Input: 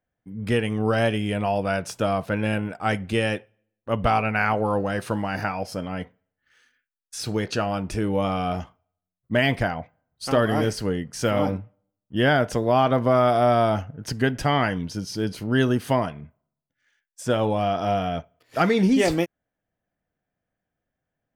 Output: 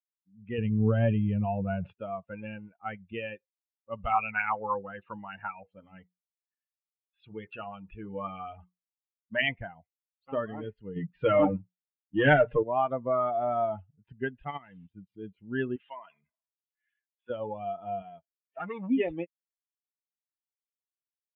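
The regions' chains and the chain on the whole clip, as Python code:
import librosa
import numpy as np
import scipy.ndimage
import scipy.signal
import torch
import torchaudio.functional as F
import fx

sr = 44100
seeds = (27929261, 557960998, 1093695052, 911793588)

y = fx.chain(x, sr, fx.low_shelf(hz=250.0, db=11.5),
    fx.sustainer(db_per_s=48.0), at=(0.58, 1.93))
y = fx.chain(y, sr, fx.hum_notches(base_hz=60, count=8),
    fx.bell_lfo(hz=5.4, low_hz=1000.0, high_hz=4100.0, db=7), at=(3.98, 9.49))
y = fx.chain(y, sr, fx.leveller(passes=2),
    fx.hum_notches(base_hz=60, count=4),
    fx.comb(ms=6.6, depth=0.52), at=(10.96, 12.63))
y = fx.chain(y, sr, fx.crossing_spikes(level_db=-19.0),
    fx.high_shelf(hz=11000.0, db=-4.5),
    fx.level_steps(step_db=10), at=(14.38, 14.9))
y = fx.chain(y, sr, fx.highpass(hz=1400.0, slope=6),
    fx.env_flatten(amount_pct=50), at=(15.76, 17.3))
y = fx.chain(y, sr, fx.highpass(hz=62.0, slope=12),
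    fx.low_shelf(hz=120.0, db=-11.0),
    fx.transformer_sat(knee_hz=1300.0), at=(18.02, 18.9))
y = fx.bin_expand(y, sr, power=2.0)
y = scipy.signal.sosfilt(scipy.signal.butter(12, 3000.0, 'lowpass', fs=sr, output='sos'), y)
y = fx.low_shelf(y, sr, hz=200.0, db=-4.0)
y = y * librosa.db_to_amplitude(-3.0)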